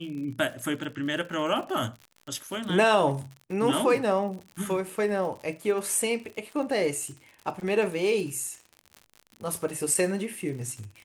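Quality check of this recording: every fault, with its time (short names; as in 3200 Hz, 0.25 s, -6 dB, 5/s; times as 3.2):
crackle 78/s -36 dBFS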